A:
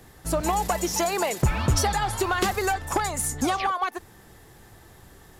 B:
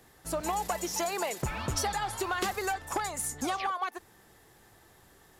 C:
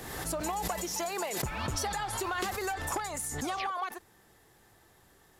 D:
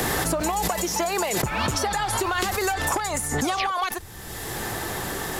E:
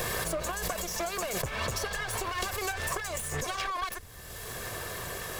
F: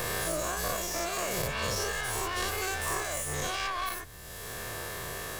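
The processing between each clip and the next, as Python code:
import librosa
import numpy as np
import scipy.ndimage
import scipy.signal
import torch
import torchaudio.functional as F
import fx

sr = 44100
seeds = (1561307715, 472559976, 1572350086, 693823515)

y1 = fx.low_shelf(x, sr, hz=200.0, db=-8.5)
y1 = y1 * librosa.db_to_amplitude(-6.0)
y2 = fx.pre_swell(y1, sr, db_per_s=37.0)
y2 = y2 * librosa.db_to_amplitude(-3.0)
y3 = fx.band_squash(y2, sr, depth_pct=100)
y3 = y3 * librosa.db_to_amplitude(8.5)
y4 = fx.lower_of_two(y3, sr, delay_ms=1.8)
y4 = y4 * librosa.db_to_amplitude(-6.0)
y5 = fx.spec_dilate(y4, sr, span_ms=120)
y5 = y5 * librosa.db_to_amplitude(-5.0)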